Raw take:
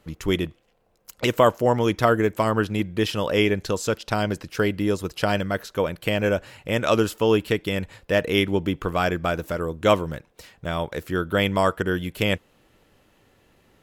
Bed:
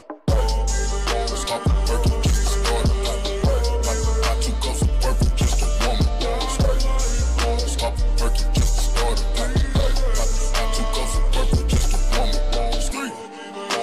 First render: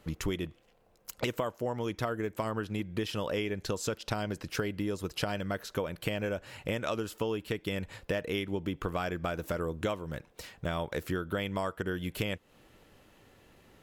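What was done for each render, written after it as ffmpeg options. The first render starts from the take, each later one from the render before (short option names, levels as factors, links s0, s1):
-af "acompressor=threshold=0.0355:ratio=12"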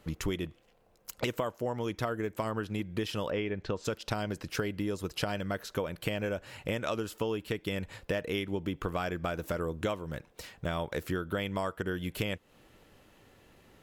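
-filter_complex "[0:a]asplit=3[s0][s1][s2];[s0]afade=t=out:st=3.29:d=0.02[s3];[s1]lowpass=2900,afade=t=in:st=3.29:d=0.02,afade=t=out:st=3.84:d=0.02[s4];[s2]afade=t=in:st=3.84:d=0.02[s5];[s3][s4][s5]amix=inputs=3:normalize=0"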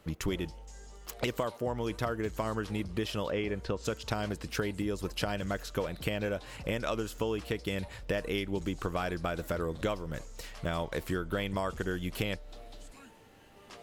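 -filter_complex "[1:a]volume=0.0422[s0];[0:a][s0]amix=inputs=2:normalize=0"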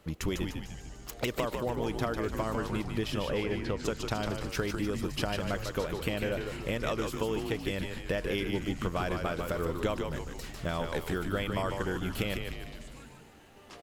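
-filter_complex "[0:a]asplit=8[s0][s1][s2][s3][s4][s5][s6][s7];[s1]adelay=149,afreqshift=-84,volume=0.562[s8];[s2]adelay=298,afreqshift=-168,volume=0.299[s9];[s3]adelay=447,afreqshift=-252,volume=0.158[s10];[s4]adelay=596,afreqshift=-336,volume=0.0841[s11];[s5]adelay=745,afreqshift=-420,volume=0.0442[s12];[s6]adelay=894,afreqshift=-504,volume=0.0234[s13];[s7]adelay=1043,afreqshift=-588,volume=0.0124[s14];[s0][s8][s9][s10][s11][s12][s13][s14]amix=inputs=8:normalize=0"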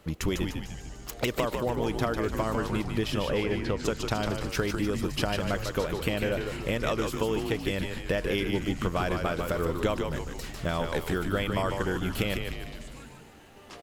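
-af "volume=1.5"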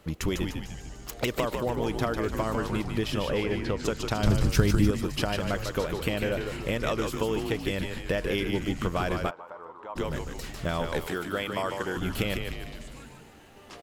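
-filter_complex "[0:a]asettb=1/sr,asplit=3[s0][s1][s2];[s0]atrim=end=4.234[s3];[s1]atrim=start=4.23:end=4.91,asetpts=PTS-STARTPTS,afade=t=in:d=0.004:c=qsin,afade=t=out:st=0.676:d=0.004:c=qsin,bass=f=250:g=12,treble=f=4000:g=5[s4];[s2]atrim=start=4.906[s5];[s3][s4]acrossfade=d=0.004:c1=hsin:c2=qsin[s6];[s6][s5]acrossfade=d=0.004:c1=qsin:c2=hsin,asplit=3[s7][s8][s9];[s7]afade=t=out:st=9.29:d=0.02[s10];[s8]bandpass=f=920:t=q:w=4.6,afade=t=in:st=9.29:d=0.02,afade=t=out:st=9.95:d=0.02[s11];[s9]afade=t=in:st=9.95:d=0.02[s12];[s10][s11][s12]amix=inputs=3:normalize=0,asettb=1/sr,asplit=3[s13][s14][s15];[s13]atrim=end=11.074[s16];[s14]atrim=start=11.07:end=11.97,asetpts=PTS-STARTPTS,afade=t=in:d=0.004:c=qsin,afade=t=out:st=0.896:d=0.004:c=qsin,highpass=f=310:p=1[s17];[s15]atrim=start=11.966[s18];[s16][s17]acrossfade=d=0.004:c1=hsin:c2=qsin[s19];[s19][s18]acrossfade=d=0.004:c1=qsin:c2=hsin"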